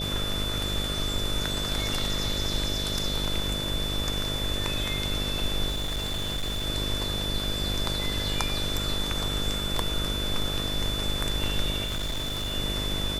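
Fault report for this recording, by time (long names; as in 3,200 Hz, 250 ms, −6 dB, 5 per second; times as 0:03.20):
mains buzz 50 Hz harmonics 13 −33 dBFS
whistle 3,500 Hz −31 dBFS
0:05.69–0:06.67: clipping −25.5 dBFS
0:11.84–0:12.54: clipping −26.5 dBFS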